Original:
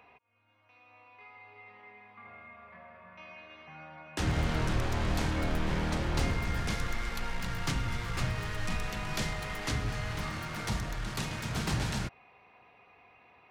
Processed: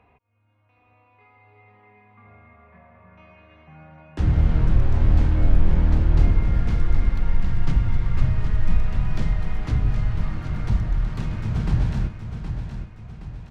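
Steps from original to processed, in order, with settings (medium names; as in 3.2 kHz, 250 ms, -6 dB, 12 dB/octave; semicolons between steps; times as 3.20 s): RIAA curve playback; feedback delay 769 ms, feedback 45%, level -8.5 dB; trim -2 dB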